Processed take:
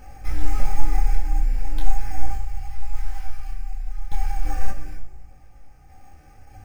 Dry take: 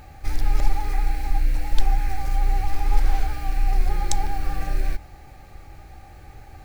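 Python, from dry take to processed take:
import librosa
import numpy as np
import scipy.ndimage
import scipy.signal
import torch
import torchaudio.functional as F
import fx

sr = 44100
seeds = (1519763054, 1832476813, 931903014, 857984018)

y = fx.peak_eq(x, sr, hz=300.0, db=-14.5, octaves=2.3, at=(2.33, 4.45))
y = fx.tremolo_random(y, sr, seeds[0], hz=1.7, depth_pct=75)
y = fx.room_shoebox(y, sr, seeds[1], volume_m3=2700.0, walls='furnished', distance_m=2.0)
y = np.repeat(scipy.signal.resample_poly(y, 1, 6), 6)[:len(y)]
y = fx.detune_double(y, sr, cents=13)
y = F.gain(torch.from_numpy(y), 1.5).numpy()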